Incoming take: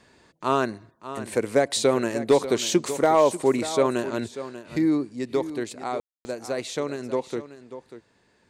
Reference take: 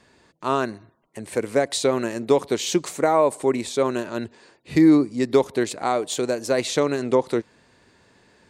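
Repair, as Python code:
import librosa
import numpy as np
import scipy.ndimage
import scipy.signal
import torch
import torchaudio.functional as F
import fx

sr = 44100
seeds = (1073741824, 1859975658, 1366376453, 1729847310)

y = fx.fix_declip(x, sr, threshold_db=-9.5)
y = fx.fix_ambience(y, sr, seeds[0], print_start_s=7.98, print_end_s=8.48, start_s=6.0, end_s=6.25)
y = fx.fix_echo_inverse(y, sr, delay_ms=590, level_db=-13.0)
y = fx.fix_level(y, sr, at_s=4.66, step_db=7.5)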